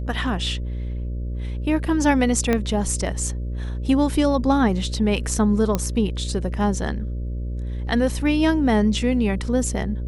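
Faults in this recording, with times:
mains buzz 60 Hz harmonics 10 −27 dBFS
0:02.53: click −8 dBFS
0:05.75: click −8 dBFS

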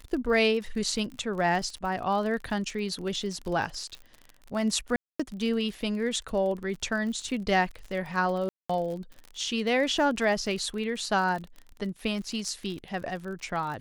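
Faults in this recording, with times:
surface crackle 49 per second −35 dBFS
0:04.96–0:05.20: drop-out 235 ms
0:08.49–0:08.70: drop-out 205 ms

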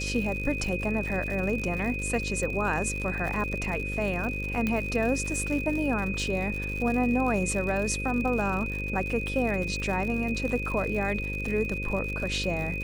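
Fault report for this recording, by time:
mains buzz 50 Hz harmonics 11 −34 dBFS
surface crackle 110 per second −33 dBFS
whistle 2,500 Hz −33 dBFS
0:04.67: click −15 dBFS

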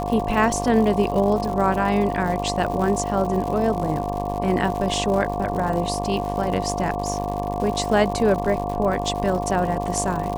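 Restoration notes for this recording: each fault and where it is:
mains buzz 50 Hz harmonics 23 −28 dBFS
surface crackle 150 per second −28 dBFS
whistle 710 Hz −27 dBFS

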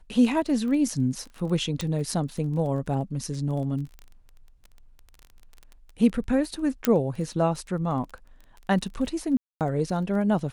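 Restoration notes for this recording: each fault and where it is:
surface crackle 14 per second −34 dBFS
0:01.81: click −15 dBFS
0:06.85: click −6 dBFS
0:09.37–0:09.61: drop-out 238 ms

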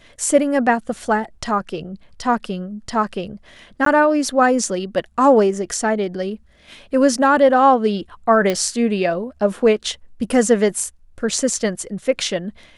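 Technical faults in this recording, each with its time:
0:03.85–0:03.86: drop-out 13 ms
0:08.50: click −7 dBFS

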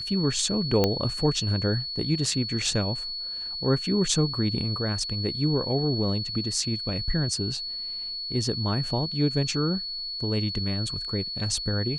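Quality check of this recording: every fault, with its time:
whistle 4,400 Hz −31 dBFS
0:00.84: click −8 dBFS

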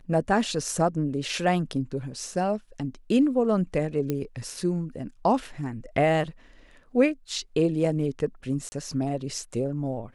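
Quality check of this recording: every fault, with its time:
0:04.10: click −14 dBFS
0:08.69–0:08.72: drop-out 30 ms

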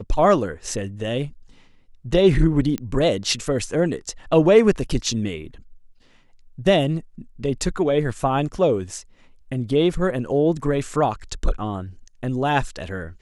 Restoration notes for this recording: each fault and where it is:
0:02.78: click −12 dBFS

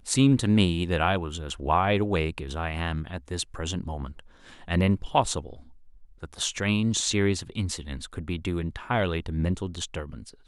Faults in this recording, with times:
nothing to report

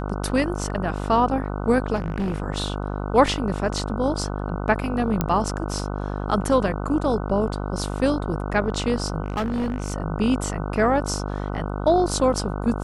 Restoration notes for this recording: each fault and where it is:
mains buzz 50 Hz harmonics 30 −28 dBFS
0:01.95–0:02.42: clipping −21 dBFS
0:05.21: click −7 dBFS
0:09.24–0:09.94: clipping −21 dBFS

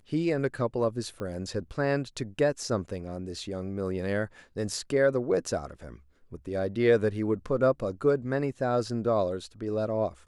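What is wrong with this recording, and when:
0:01.20: click −25 dBFS

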